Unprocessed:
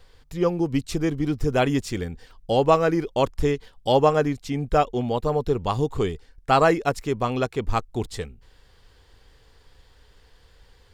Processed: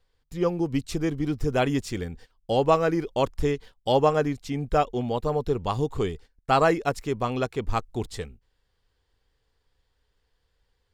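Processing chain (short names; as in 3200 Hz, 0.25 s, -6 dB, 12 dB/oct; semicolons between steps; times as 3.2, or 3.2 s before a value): gate -42 dBFS, range -15 dB; gain -2.5 dB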